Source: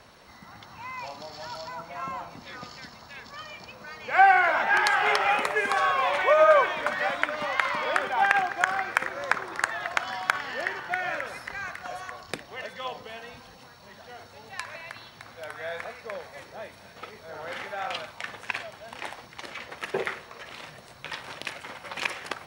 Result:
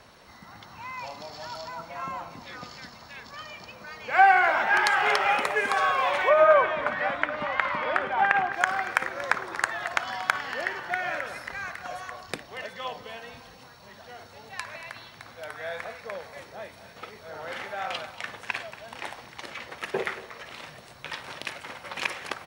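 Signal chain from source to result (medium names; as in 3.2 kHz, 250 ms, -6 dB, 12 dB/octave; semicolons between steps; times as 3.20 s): 6.29–8.53 s: tone controls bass +4 dB, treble -14 dB; delay 233 ms -16 dB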